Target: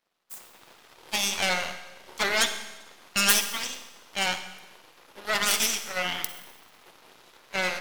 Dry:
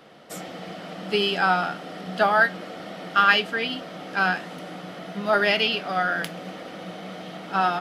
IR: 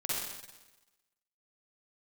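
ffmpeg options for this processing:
-filter_complex "[0:a]aeval=exprs='0.596*(cos(1*acos(clip(val(0)/0.596,-1,1)))-cos(1*PI/2))+0.119*(cos(3*acos(clip(val(0)/0.596,-1,1)))-cos(3*PI/2))+0.0376*(cos(7*acos(clip(val(0)/0.596,-1,1)))-cos(7*PI/2))+0.15*(cos(8*acos(clip(val(0)/0.596,-1,1)))-cos(8*PI/2))':channel_layout=same,aemphasis=mode=production:type=bsi,asplit=2[link_01][link_02];[1:a]atrim=start_sample=2205[link_03];[link_02][link_03]afir=irnorm=-1:irlink=0,volume=-12.5dB[link_04];[link_01][link_04]amix=inputs=2:normalize=0,volume=-8dB"

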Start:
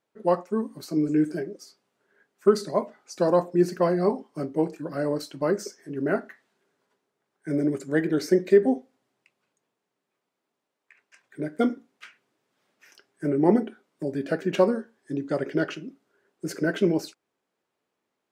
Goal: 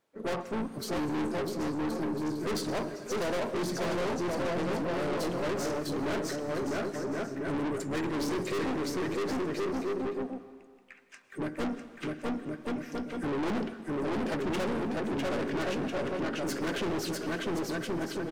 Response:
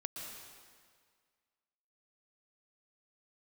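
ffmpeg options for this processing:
-filter_complex "[0:a]aecho=1:1:650|1072|1347|1526|1642:0.631|0.398|0.251|0.158|0.1,asplit=3[link_01][link_02][link_03];[link_02]asetrate=33038,aresample=44100,atempo=1.33484,volume=-12dB[link_04];[link_03]asetrate=55563,aresample=44100,atempo=0.793701,volume=-16dB[link_05];[link_01][link_04][link_05]amix=inputs=3:normalize=0,aeval=exprs='(tanh(50.1*val(0)+0.25)-tanh(0.25))/50.1':channel_layout=same,asplit=2[link_06][link_07];[1:a]atrim=start_sample=2205[link_08];[link_07][link_08]afir=irnorm=-1:irlink=0,volume=-7.5dB[link_09];[link_06][link_09]amix=inputs=2:normalize=0,volume=2dB"

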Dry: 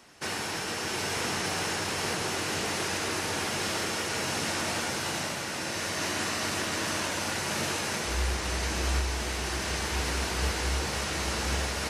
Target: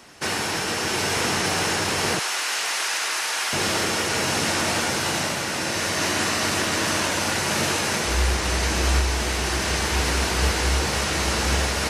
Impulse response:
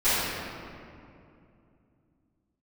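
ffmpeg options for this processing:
-filter_complex "[0:a]asettb=1/sr,asplit=3[link_01][link_02][link_03];[link_01]atrim=end=2.194[link_04];[link_02]atrim=start=2.19:end=3.53,asetpts=PTS-STARTPTS,afade=type=in:duration=0.004:curve=qsin,afade=type=out:start_time=1.336:duration=0.004:curve=qsin,highpass=970[link_05];[link_03]atrim=start=3.526[link_06];[link_04][link_05]acrossfade=duration=0.004:curve1=hsin:curve2=qsin[link_07];[link_07][link_06]acrossfade=duration=0.004:curve1=qsin:curve2=hsin,volume=7.5dB"

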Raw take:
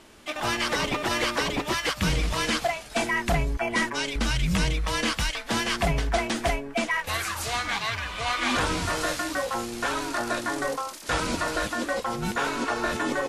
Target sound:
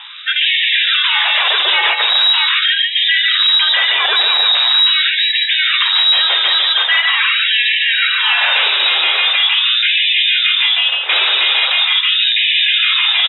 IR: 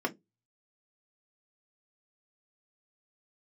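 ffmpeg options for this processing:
-af "aeval=exprs='0.224*sin(PI/2*2.82*val(0)/0.224)':channel_layout=same,lowpass=frequency=3300:width_type=q:width=0.5098,lowpass=frequency=3300:width_type=q:width=0.6013,lowpass=frequency=3300:width_type=q:width=0.9,lowpass=frequency=3300:width_type=q:width=2.563,afreqshift=-3900,aecho=1:1:144:0.596,alimiter=level_in=10dB:limit=-1dB:release=50:level=0:latency=1,afftfilt=real='re*gte(b*sr/1024,310*pow(1700/310,0.5+0.5*sin(2*PI*0.42*pts/sr)))':imag='im*gte(b*sr/1024,310*pow(1700/310,0.5+0.5*sin(2*PI*0.42*pts/sr)))':win_size=1024:overlap=0.75,volume=-3.5dB"

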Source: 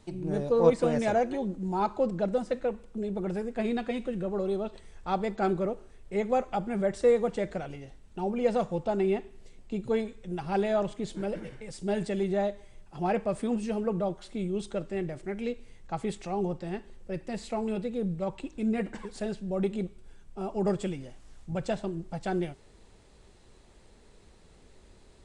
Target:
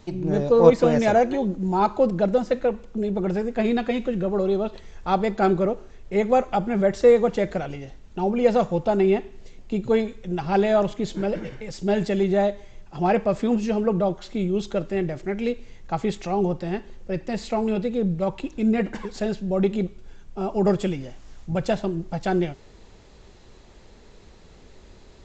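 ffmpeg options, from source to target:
ffmpeg -i in.wav -af "aresample=16000,aresample=44100,volume=7.5dB" out.wav

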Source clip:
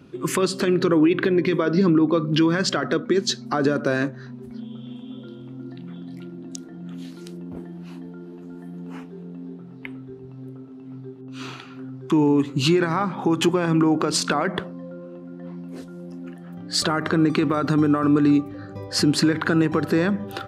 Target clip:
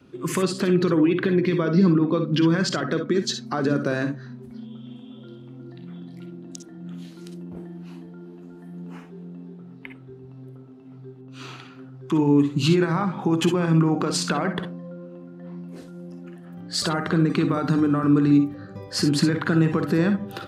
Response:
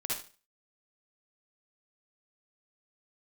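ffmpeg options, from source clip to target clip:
-filter_complex "[0:a]adynamicequalizer=threshold=0.0141:dfrequency=180:dqfactor=2.4:tfrequency=180:tqfactor=2.4:attack=5:release=100:ratio=0.375:range=3.5:mode=boostabove:tftype=bell,asplit=2[link_01][link_02];[1:a]atrim=start_sample=2205,atrim=end_sample=3087[link_03];[link_02][link_03]afir=irnorm=-1:irlink=0,volume=-4.5dB[link_04];[link_01][link_04]amix=inputs=2:normalize=0,volume=-6.5dB"

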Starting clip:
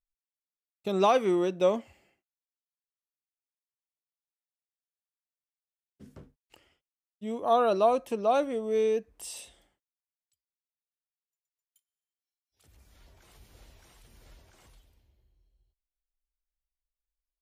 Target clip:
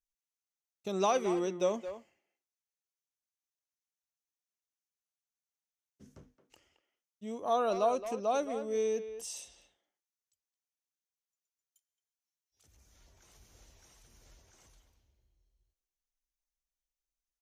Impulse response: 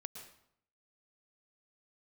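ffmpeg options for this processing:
-filter_complex "[0:a]equalizer=frequency=6200:width_type=o:width=0.4:gain=12.5,asplit=2[link_01][link_02];[link_02]adelay=220,highpass=300,lowpass=3400,asoftclip=type=hard:threshold=-18.5dB,volume=-10dB[link_03];[link_01][link_03]amix=inputs=2:normalize=0,volume=-6dB"

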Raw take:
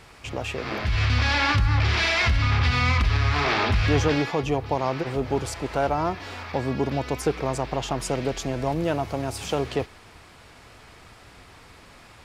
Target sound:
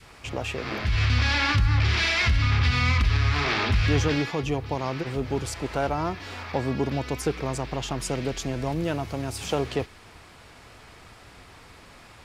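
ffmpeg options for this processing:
ffmpeg -i in.wav -af "adynamicequalizer=threshold=0.0126:dfrequency=710:dqfactor=0.83:tfrequency=710:tqfactor=0.83:attack=5:release=100:ratio=0.375:range=3:mode=cutabove:tftype=bell" out.wav

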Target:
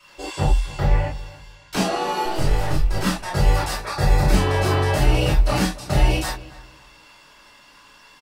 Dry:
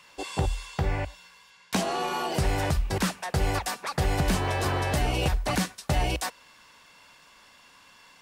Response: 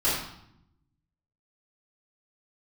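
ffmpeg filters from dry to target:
-filter_complex "[0:a]asettb=1/sr,asplit=3[link_01][link_02][link_03];[link_01]atrim=end=2.254[link_04];[link_02]atrim=start=2.25:end=3.03,asetpts=PTS-STARTPTS,afade=type=in:duration=0.004:curve=qsin,afade=type=out:start_time=0.776:duration=0.004:curve=qsin,aeval=exprs='if(lt(val(0),0),0.251*val(0),val(0))':channel_layout=same[link_05];[link_03]atrim=start=3.026[link_06];[link_04][link_05]acrossfade=duration=0.004:curve1=hsin:curve2=qsin[link_07];[link_07][link_06]acrossfade=duration=0.004:curve1=qsin:curve2=hsin,asettb=1/sr,asplit=3[link_08][link_09][link_10];[link_08]atrim=end=3.784[link_11];[link_09]atrim=start=3.78:end=4.33,asetpts=PTS-STARTPTS,afade=type=in:duration=0.004:curve=qsin,afade=type=out:start_time=0.546:duration=0.004:curve=qsin,asuperstop=centerf=3000:order=4:qfactor=7.6[link_12];[link_10]atrim=start=4.326[link_13];[link_11][link_12]acrossfade=duration=0.004:curve1=hsin:curve2=qsin[link_14];[link_14][link_13]acrossfade=duration=0.004:curve1=qsin:curve2=hsin,asplit=2[link_15][link_16];[link_16]adelay=279,lowpass=frequency=2000:poles=1,volume=-17.5dB,asplit=2[link_17][link_18];[link_18]adelay=279,lowpass=frequency=2000:poles=1,volume=0.28,asplit=2[link_19][link_20];[link_20]adelay=279,lowpass=frequency=2000:poles=1,volume=0.28[link_21];[link_15][link_17][link_19][link_21]amix=inputs=4:normalize=0[link_22];[1:a]atrim=start_sample=2205,atrim=end_sample=3528[link_23];[link_22][link_23]afir=irnorm=-1:irlink=0,volume=-6dB"

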